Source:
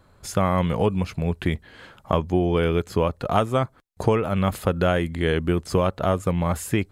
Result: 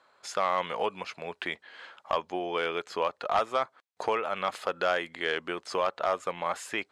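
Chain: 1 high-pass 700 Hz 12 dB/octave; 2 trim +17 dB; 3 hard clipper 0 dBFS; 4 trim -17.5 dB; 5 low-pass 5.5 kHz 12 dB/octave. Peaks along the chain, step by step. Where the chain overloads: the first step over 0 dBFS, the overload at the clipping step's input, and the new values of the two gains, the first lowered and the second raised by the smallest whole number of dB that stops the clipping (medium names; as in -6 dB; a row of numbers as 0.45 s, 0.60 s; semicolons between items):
-7.0 dBFS, +10.0 dBFS, 0.0 dBFS, -17.5 dBFS, -17.0 dBFS; step 2, 10.0 dB; step 2 +7 dB, step 4 -7.5 dB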